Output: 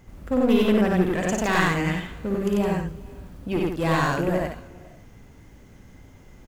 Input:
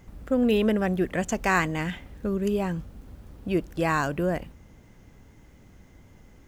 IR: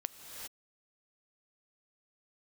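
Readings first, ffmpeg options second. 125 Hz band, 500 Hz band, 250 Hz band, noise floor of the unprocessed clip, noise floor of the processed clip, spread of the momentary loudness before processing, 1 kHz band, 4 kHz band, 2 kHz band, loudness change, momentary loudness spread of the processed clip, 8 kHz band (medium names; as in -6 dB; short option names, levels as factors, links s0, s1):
+4.0 dB, +3.0 dB, +3.5 dB, -53 dBFS, -49 dBFS, 11 LU, +2.5 dB, +5.0 dB, +2.5 dB, +3.0 dB, 14 LU, +3.0 dB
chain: -filter_complex "[0:a]aeval=exprs='clip(val(0),-1,0.0668)':c=same,aecho=1:1:55.39|93.29|163.3:0.562|1|0.447,asplit=2[s0][s1];[1:a]atrim=start_sample=2205,asetrate=34839,aresample=44100,adelay=8[s2];[s1][s2]afir=irnorm=-1:irlink=0,volume=0.112[s3];[s0][s3]amix=inputs=2:normalize=0"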